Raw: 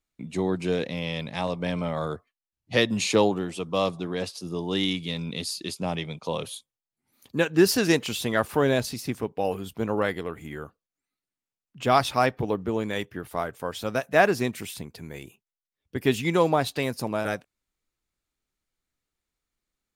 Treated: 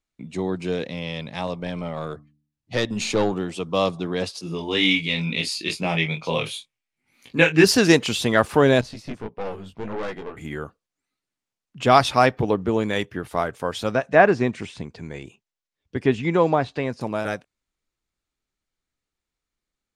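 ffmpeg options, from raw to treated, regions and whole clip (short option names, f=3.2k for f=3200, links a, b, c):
-filter_complex "[0:a]asettb=1/sr,asplit=3[a][b][c];[a]atrim=end=1.604[d];[b]atrim=start=1.6:end=3.33,asetpts=PTS-STARTPTS,afade=t=in:d=0.004:c=qsin,afade=t=out:st=1.726:d=0.004:c=qsin,bandreject=f=74.03:t=h:w=4,bandreject=f=148.06:t=h:w=4,bandreject=f=222.09:t=h:w=4,bandreject=f=296.12:t=h:w=4,aeval=exprs='(tanh(5.62*val(0)+0.45)-tanh(0.45))/5.62':c=same[e];[c]atrim=start=3.326[f];[d][e]acrossfade=d=0.004:c1=hsin:c2=qsin[g];[g][f]acrossfade=d=0.004:c1=qsin:c2=hsin,asettb=1/sr,asplit=3[h][i][j];[h]atrim=end=4.414[k];[i]atrim=start=4.41:end=7.64,asetpts=PTS-STARTPTS,afade=t=in:d=0.004:c=qsin,afade=t=out:st=3.226:d=0.004:c=qsin,equalizer=f=2.3k:t=o:w=0.68:g=13,flanger=delay=17:depth=2.7:speed=2.1,asplit=2[l][m];[m]adelay=25,volume=-8dB[n];[l][n]amix=inputs=2:normalize=0,atrim=end_sample=142443[o];[j]atrim=start=7.636[p];[k][o]acrossfade=d=0.004:c1=hsin:c2=qsin[q];[q][p]acrossfade=d=0.004:c1=qsin:c2=hsin,asettb=1/sr,asplit=3[r][s][t];[r]atrim=end=8.814[u];[s]atrim=start=8.81:end=10.37,asetpts=PTS-STARTPTS,afade=t=in:d=0.004:c=qsin,afade=t=out:st=1.556:d=0.004:c=qsin,aemphasis=mode=reproduction:type=50kf,flanger=delay=16:depth=4.8:speed=1.6,aeval=exprs='(tanh(35.5*val(0)+0.7)-tanh(0.7))/35.5':c=same[v];[t]atrim=start=10.366[w];[u][v]acrossfade=d=0.004:c1=hsin:c2=qsin[x];[x][w]acrossfade=d=0.004:c1=qsin:c2=hsin,asettb=1/sr,asplit=3[y][z][aa];[y]atrim=end=13.924[ab];[z]atrim=start=13.92:end=17.01,asetpts=PTS-STARTPTS,afade=t=in:d=0.004:c=qsin,afade=t=out:st=3.086:d=0.004:c=qsin,lowpass=f=8.2k:w=0.5412,lowpass=f=8.2k:w=1.3066,bandreject=f=1.3k:w=27,acrossover=split=2500[ac][ad];[ad]acompressor=threshold=-48dB:ratio=4:attack=1:release=60[ae];[ac][ae]amix=inputs=2:normalize=0[af];[aa]atrim=start=17.006[ag];[ab][af]acrossfade=d=0.004:c1=hsin:c2=qsin[ah];[ah][ag]acrossfade=d=0.004:c1=qsin:c2=hsin,lowpass=8.8k,dynaudnorm=f=400:g=21:m=11.5dB"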